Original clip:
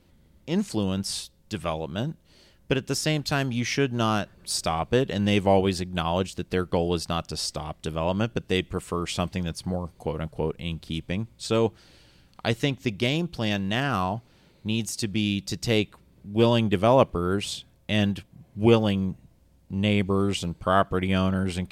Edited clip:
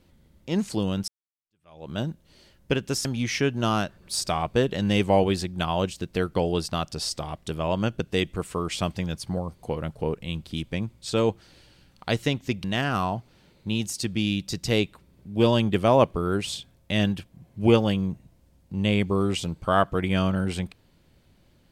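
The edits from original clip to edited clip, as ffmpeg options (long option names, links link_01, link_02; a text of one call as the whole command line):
ffmpeg -i in.wav -filter_complex "[0:a]asplit=4[link_01][link_02][link_03][link_04];[link_01]atrim=end=1.08,asetpts=PTS-STARTPTS,afade=type=out:start_time=1.076:duration=0.004:curve=hsin[link_05];[link_02]atrim=start=1.08:end=3.052,asetpts=PTS-STARTPTS,afade=type=in:duration=0.82:curve=exp[link_06];[link_03]atrim=start=3.418:end=13.012[link_07];[link_04]atrim=start=13.628[link_08];[link_05][link_06]concat=n=2:v=0:a=1[link_09];[link_09][link_07]acrossfade=duration=0.004:curve1=hsin:curve2=hsin[link_10];[link_10][link_08]acrossfade=duration=0.004:curve1=hsin:curve2=hsin" out.wav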